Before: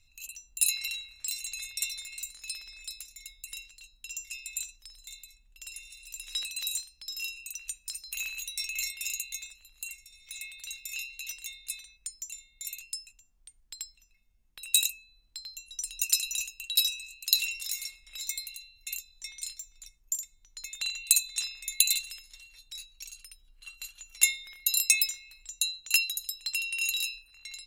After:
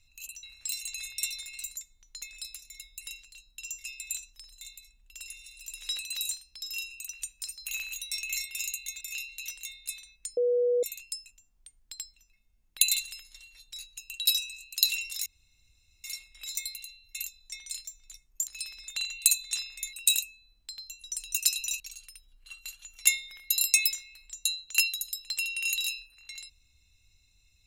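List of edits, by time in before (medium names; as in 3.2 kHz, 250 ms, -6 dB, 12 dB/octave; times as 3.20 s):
0.43–1.02 s: delete
2.36–2.77 s: swap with 20.19–20.73 s
9.47–10.82 s: delete
12.18–12.64 s: bleep 487 Hz -22 dBFS
14.60–16.47 s: swap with 21.78–22.96 s
17.76 s: insert room tone 0.78 s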